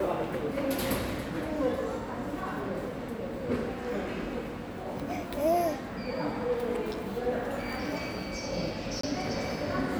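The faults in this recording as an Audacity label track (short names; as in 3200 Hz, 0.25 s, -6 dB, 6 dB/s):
9.010000	9.030000	gap 24 ms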